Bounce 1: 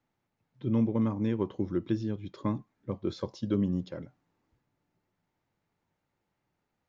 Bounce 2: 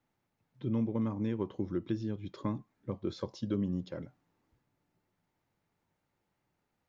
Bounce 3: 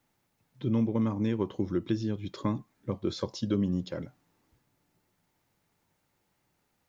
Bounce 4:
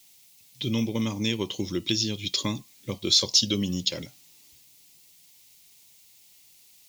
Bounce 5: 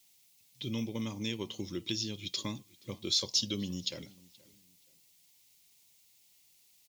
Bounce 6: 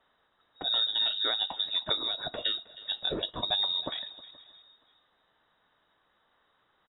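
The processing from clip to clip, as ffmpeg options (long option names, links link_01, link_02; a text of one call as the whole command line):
ffmpeg -i in.wav -af "acompressor=threshold=-36dB:ratio=1.5" out.wav
ffmpeg -i in.wav -af "highshelf=frequency=3600:gain=8,volume=4.5dB" out.wav
ffmpeg -i in.wav -af "aexciter=amount=6:drive=9.2:freq=2300" out.wav
ffmpeg -i in.wav -filter_complex "[0:a]asplit=2[link_01][link_02];[link_02]adelay=475,lowpass=frequency=3200:poles=1,volume=-22.5dB,asplit=2[link_03][link_04];[link_04]adelay=475,lowpass=frequency=3200:poles=1,volume=0.31[link_05];[link_01][link_03][link_05]amix=inputs=3:normalize=0,volume=-9dB" out.wav
ffmpeg -i in.wav -filter_complex "[0:a]asplit=2[link_01][link_02];[link_02]adelay=315,lowpass=frequency=2700:poles=1,volume=-17.5dB,asplit=2[link_03][link_04];[link_04]adelay=315,lowpass=frequency=2700:poles=1,volume=0.37,asplit=2[link_05][link_06];[link_06]adelay=315,lowpass=frequency=2700:poles=1,volume=0.37[link_07];[link_01][link_03][link_05][link_07]amix=inputs=4:normalize=0,lowpass=frequency=3300:width_type=q:width=0.5098,lowpass=frequency=3300:width_type=q:width=0.6013,lowpass=frequency=3300:width_type=q:width=0.9,lowpass=frequency=3300:width_type=q:width=2.563,afreqshift=-3900,volume=7dB" out.wav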